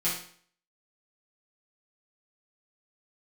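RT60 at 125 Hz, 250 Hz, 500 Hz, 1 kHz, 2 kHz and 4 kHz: 0.55, 0.55, 0.50, 0.55, 0.50, 0.50 s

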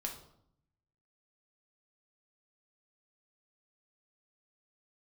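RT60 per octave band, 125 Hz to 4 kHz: 1.2, 0.95, 0.70, 0.70, 0.50, 0.50 s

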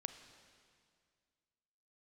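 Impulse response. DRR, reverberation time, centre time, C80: 8.5 dB, 2.1 s, 22 ms, 10.5 dB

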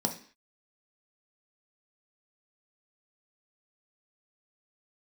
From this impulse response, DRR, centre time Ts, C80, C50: 2.5 dB, 13 ms, 16.0 dB, 11.0 dB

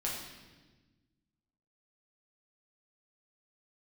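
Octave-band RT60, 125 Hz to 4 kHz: 2.0, 1.9, 1.4, 1.1, 1.2, 1.2 s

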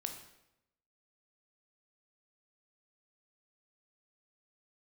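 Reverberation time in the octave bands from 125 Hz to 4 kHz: 1.0, 0.95, 0.90, 0.80, 0.80, 0.70 s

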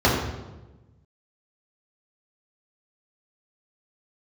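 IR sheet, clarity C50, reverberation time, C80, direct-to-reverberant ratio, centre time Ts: 2.0 dB, 1.1 s, 4.5 dB, -7.0 dB, 57 ms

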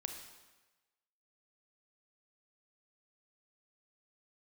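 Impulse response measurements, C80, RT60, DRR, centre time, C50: 8.0 dB, 1.2 s, 4.5 dB, 31 ms, 6.0 dB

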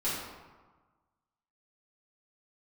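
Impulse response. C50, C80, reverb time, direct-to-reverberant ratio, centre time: -0.5 dB, 2.5 dB, 1.3 s, -11.5 dB, 80 ms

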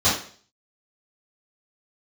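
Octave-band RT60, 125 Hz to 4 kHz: 0.45, 0.50, 0.50, 0.45, 0.45, 0.45 s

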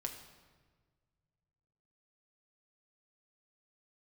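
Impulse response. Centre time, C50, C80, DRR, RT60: 24 ms, 8.0 dB, 9.5 dB, 3.0 dB, 1.5 s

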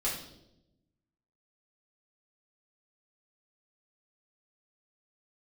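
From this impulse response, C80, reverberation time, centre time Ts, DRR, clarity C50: 8.0 dB, 0.85 s, 38 ms, -7.5 dB, 5.0 dB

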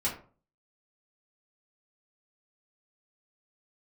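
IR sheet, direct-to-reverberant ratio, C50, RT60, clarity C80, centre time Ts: -8.0 dB, 8.5 dB, 0.40 s, 13.0 dB, 25 ms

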